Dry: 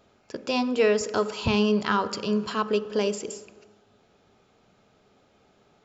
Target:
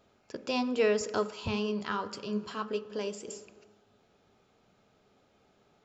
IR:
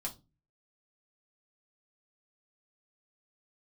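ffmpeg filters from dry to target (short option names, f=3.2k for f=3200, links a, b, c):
-filter_complex "[0:a]asplit=3[a][b][c];[a]afade=t=out:st=1.26:d=0.02[d];[b]flanger=delay=6.6:depth=6:regen=62:speed=1.8:shape=triangular,afade=t=in:st=1.26:d=0.02,afade=t=out:st=3.26:d=0.02[e];[c]afade=t=in:st=3.26:d=0.02[f];[d][e][f]amix=inputs=3:normalize=0,volume=-5dB"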